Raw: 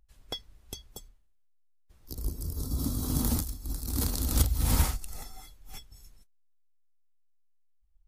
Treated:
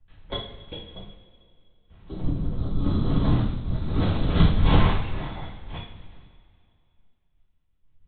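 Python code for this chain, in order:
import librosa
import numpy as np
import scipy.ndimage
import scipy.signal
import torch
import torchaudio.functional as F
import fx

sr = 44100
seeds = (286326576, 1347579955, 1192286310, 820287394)

y = fx.lpc_vocoder(x, sr, seeds[0], excitation='whisper', order=10)
y = fx.rev_double_slope(y, sr, seeds[1], early_s=0.54, late_s=2.6, knee_db=-17, drr_db=-5.0)
y = F.gain(torch.from_numpy(y), 3.0).numpy()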